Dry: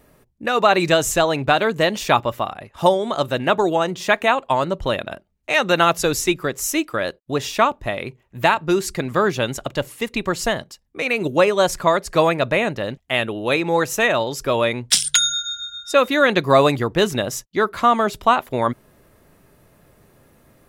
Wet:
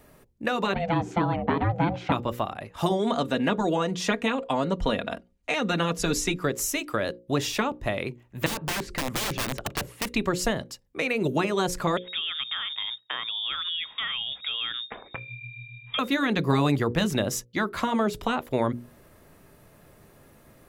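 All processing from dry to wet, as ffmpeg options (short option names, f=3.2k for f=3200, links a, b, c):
-filter_complex "[0:a]asettb=1/sr,asplit=3[a][b][c];[a]atrim=end=0.744[d];[b]atrim=start=0.74:end=2.12,asetpts=PTS-STARTPTS,afade=t=in:d=0.004:c=qsin,afade=t=out:st=1.376:d=0.004:c=qsin,equalizer=f=410:t=o:w=0.43:g=7,aeval=exprs='val(0)*sin(2*PI*340*n/s)':c=same,highpass=110,lowpass=2k[e];[c]atrim=start=2.116[f];[d][e]acrossfade=d=0.004:c1=hsin:c2=qsin[g];[g][f]acrossfade=d=0.004:c1=qsin:c2=hsin,asettb=1/sr,asplit=3[h][i][j];[h]atrim=end=2.914[k];[i]atrim=start=2.91:end=6.43,asetpts=PTS-STARTPTS,afade=t=in:d=0.004:c=qsin,afade=t=out:st=3.516:d=0.004:c=qsin,lowpass=10k,aecho=1:1:4.2:0.55,atrim=end_sample=155232[l];[j]atrim=start=6.426[m];[k][l]acrossfade=d=0.004:c1=hsin:c2=qsin[n];[n][m]acrossfade=d=0.004:c1=qsin:c2=hsin,asettb=1/sr,asplit=3[o][p][q];[o]atrim=end=8.464[r];[p]atrim=start=8.46:end=10.06,asetpts=PTS-STARTPTS,afade=t=in:d=0.004:c=qsin,afade=t=out:st=1.596:d=0.004:c=qsin,acrossover=split=4200[s][t];[t]acompressor=threshold=-43dB:ratio=4:attack=1:release=60[u];[s][u]amix=inputs=2:normalize=0,highshelf=f=2.3k:g=-6.5,aeval=exprs='(mod(9.44*val(0)+1,2)-1)/9.44':c=same[v];[q]atrim=start=10.056[w];[r][v]acrossfade=d=0.004:c1=hsin:c2=qsin[x];[x][w]acrossfade=d=0.004:c1=qsin:c2=hsin,asettb=1/sr,asplit=3[y][z][aa];[y]atrim=end=11.974[ab];[z]atrim=start=11.97:end=15.99,asetpts=PTS-STARTPTS,afade=t=in:d=0.004:c=qsin,afade=t=out:st=4.016:d=0.004:c=qsin,acompressor=threshold=-27dB:ratio=4:attack=3.2:release=140:knee=1:detection=peak,lowpass=f=3.2k:t=q:w=0.5098,lowpass=f=3.2k:t=q:w=0.6013,lowpass=f=3.2k:t=q:w=0.9,lowpass=f=3.2k:t=q:w=2.563,afreqshift=-3800[ac];[aa]atrim=start=15.986[ad];[ab][ac]acrossfade=d=0.004:c1=hsin:c2=qsin[ae];[ae][ad]acrossfade=d=0.004:c1=qsin:c2=hsin,afftfilt=real='re*lt(hypot(re,im),1.12)':imag='im*lt(hypot(re,im),1.12)':win_size=1024:overlap=0.75,bandreject=f=60:t=h:w=6,bandreject=f=120:t=h:w=6,bandreject=f=180:t=h:w=6,bandreject=f=240:t=h:w=6,bandreject=f=300:t=h:w=6,bandreject=f=360:t=h:w=6,bandreject=f=420:t=h:w=6,bandreject=f=480:t=h:w=6,bandreject=f=540:t=h:w=6,acrossover=split=420[af][ag];[ag]acompressor=threshold=-26dB:ratio=6[ah];[af][ah]amix=inputs=2:normalize=0"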